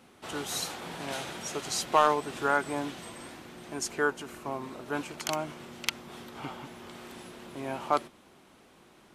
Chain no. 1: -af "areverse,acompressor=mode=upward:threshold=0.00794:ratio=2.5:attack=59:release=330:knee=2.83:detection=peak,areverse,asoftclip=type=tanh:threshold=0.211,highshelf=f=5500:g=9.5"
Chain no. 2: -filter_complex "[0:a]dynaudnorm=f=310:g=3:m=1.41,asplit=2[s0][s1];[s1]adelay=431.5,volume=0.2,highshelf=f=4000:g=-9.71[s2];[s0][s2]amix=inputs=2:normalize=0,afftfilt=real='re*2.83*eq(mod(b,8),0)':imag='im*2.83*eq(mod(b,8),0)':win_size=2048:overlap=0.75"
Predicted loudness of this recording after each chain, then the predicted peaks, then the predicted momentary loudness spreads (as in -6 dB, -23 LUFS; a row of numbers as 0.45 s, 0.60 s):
-31.5 LUFS, -32.0 LUFS; -8.5 dBFS, -12.5 dBFS; 16 LU, 17 LU